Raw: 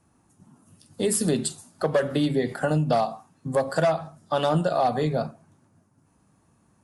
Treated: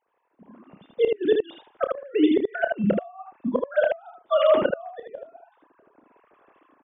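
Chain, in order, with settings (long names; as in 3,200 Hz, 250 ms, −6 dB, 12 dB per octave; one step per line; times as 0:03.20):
three sine waves on the formant tracks
dynamic equaliser 250 Hz, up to −7 dB, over −39 dBFS, Q 1.6
automatic gain control gain up to 16.5 dB
gate with flip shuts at −10 dBFS, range −31 dB
on a send: ambience of single reflections 30 ms −10 dB, 78 ms −3.5 dB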